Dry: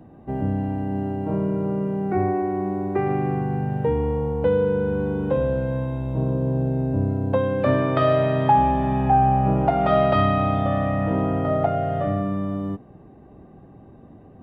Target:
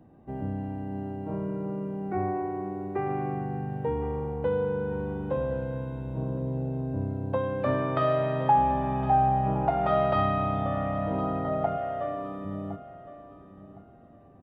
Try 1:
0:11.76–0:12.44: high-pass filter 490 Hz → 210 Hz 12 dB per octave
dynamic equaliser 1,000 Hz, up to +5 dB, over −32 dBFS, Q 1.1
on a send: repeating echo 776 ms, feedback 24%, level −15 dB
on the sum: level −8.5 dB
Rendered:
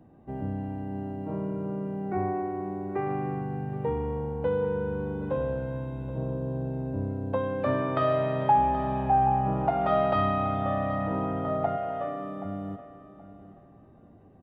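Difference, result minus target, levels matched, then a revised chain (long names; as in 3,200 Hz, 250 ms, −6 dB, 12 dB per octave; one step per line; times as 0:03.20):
echo 286 ms early
0:11.76–0:12.44: high-pass filter 490 Hz → 210 Hz 12 dB per octave
dynamic equaliser 1,000 Hz, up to +5 dB, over −32 dBFS, Q 1.1
on a send: repeating echo 1,062 ms, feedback 24%, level −15 dB
on the sum: level −8.5 dB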